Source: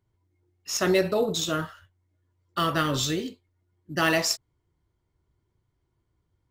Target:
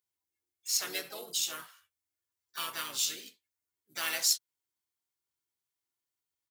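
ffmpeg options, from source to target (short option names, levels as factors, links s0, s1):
-filter_complex "[0:a]aderivative,asplit=3[s0][s1][s2];[s1]asetrate=35002,aresample=44100,atempo=1.25992,volume=0.447[s3];[s2]asetrate=55563,aresample=44100,atempo=0.793701,volume=0.355[s4];[s0][s3][s4]amix=inputs=3:normalize=0"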